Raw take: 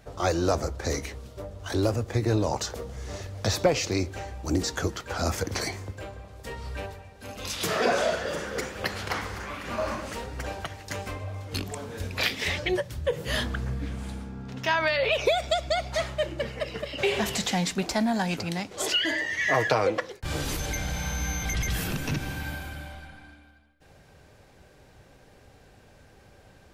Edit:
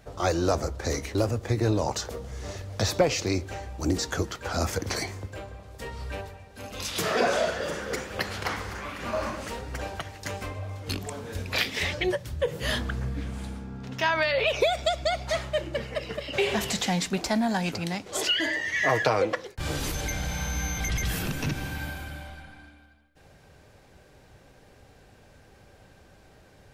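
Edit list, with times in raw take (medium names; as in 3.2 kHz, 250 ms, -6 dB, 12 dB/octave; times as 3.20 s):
1.15–1.80 s: delete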